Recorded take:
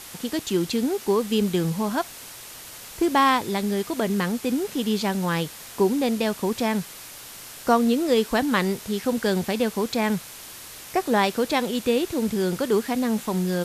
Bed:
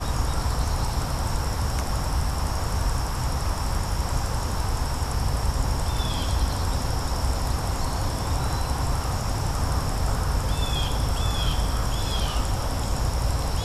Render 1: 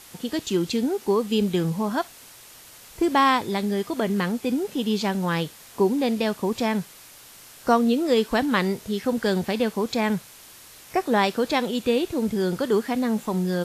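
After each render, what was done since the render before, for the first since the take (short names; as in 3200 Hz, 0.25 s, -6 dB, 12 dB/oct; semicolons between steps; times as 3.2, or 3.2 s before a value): noise print and reduce 6 dB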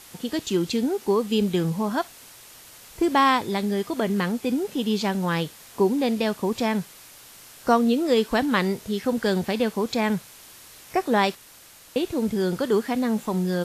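11.35–11.96 room tone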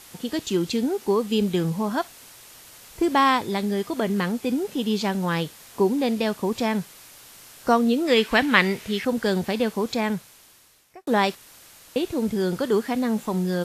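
8.07–9.05 bell 2300 Hz +11 dB 1.3 oct; 9.88–11.07 fade out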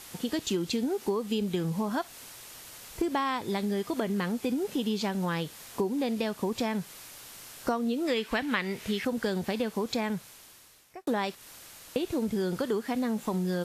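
compressor 6:1, threshold -26 dBFS, peak gain reduction 14 dB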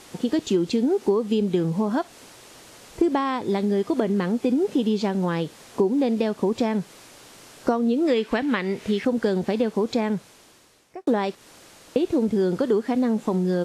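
LPF 9000 Hz 12 dB/oct; bell 350 Hz +9 dB 2.6 oct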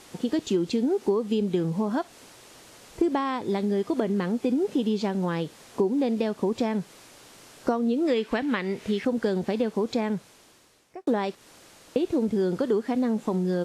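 gain -3 dB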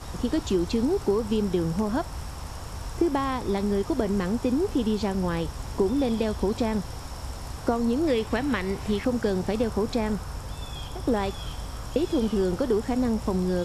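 add bed -11 dB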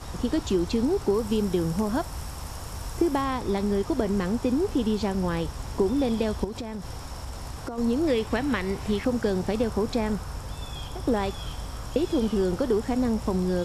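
1.14–3.22 high shelf 9200 Hz +8.5 dB; 6.44–7.78 compressor, threshold -30 dBFS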